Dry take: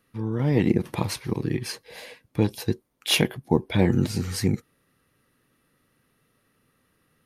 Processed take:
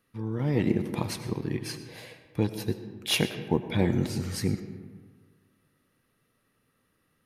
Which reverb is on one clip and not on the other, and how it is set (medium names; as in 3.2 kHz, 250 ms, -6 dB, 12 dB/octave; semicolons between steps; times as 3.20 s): algorithmic reverb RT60 1.6 s, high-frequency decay 0.5×, pre-delay 55 ms, DRR 10 dB; trim -4.5 dB